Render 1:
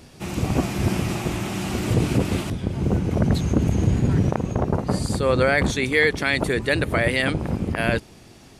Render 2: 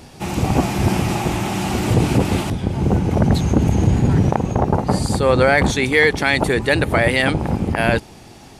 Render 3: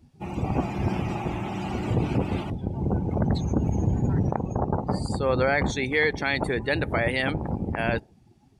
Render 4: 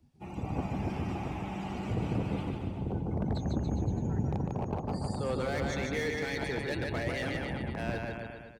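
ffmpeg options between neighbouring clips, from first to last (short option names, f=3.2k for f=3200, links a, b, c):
-filter_complex "[0:a]equalizer=f=830:t=o:w=0.35:g=7.5,asplit=2[a][b];[b]asoftclip=type=tanh:threshold=-19.5dB,volume=-11.5dB[c];[a][c]amix=inputs=2:normalize=0,volume=3dB"
-af "afftdn=nr=19:nf=-31,volume=-8.5dB"
-filter_complex "[0:a]aecho=1:1:150|285|406.5|515.8|614.3:0.631|0.398|0.251|0.158|0.1,acrossover=split=290|570|3100[a][b][c][d];[c]asoftclip=type=hard:threshold=-28dB[e];[a][b][e][d]amix=inputs=4:normalize=0,volume=-9dB"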